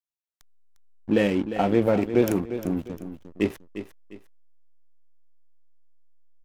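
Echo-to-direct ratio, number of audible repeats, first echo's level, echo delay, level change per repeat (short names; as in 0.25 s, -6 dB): -10.5 dB, 2, -11.0 dB, 0.352 s, -9.5 dB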